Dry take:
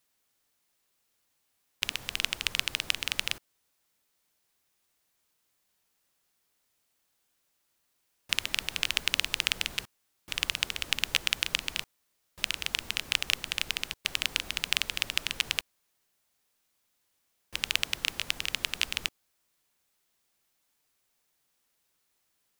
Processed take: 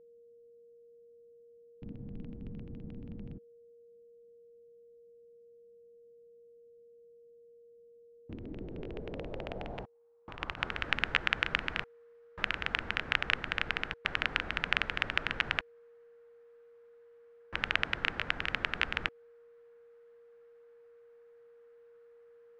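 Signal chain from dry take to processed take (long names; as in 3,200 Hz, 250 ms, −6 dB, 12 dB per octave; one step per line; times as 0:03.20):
dynamic equaliser 1,100 Hz, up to −5 dB, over −52 dBFS, Q 1.7
low-pass filter sweep 220 Hz → 1,500 Hz, 0:07.92–0:10.85
steady tone 470 Hz −60 dBFS
0:09.83–0:10.59: output level in coarse steps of 10 dB
level +4.5 dB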